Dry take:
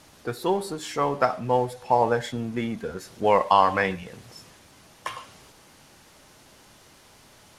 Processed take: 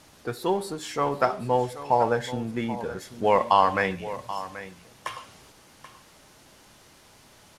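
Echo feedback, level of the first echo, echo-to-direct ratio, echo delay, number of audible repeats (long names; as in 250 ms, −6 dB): repeats not evenly spaced, −14.0 dB, −14.0 dB, 782 ms, 1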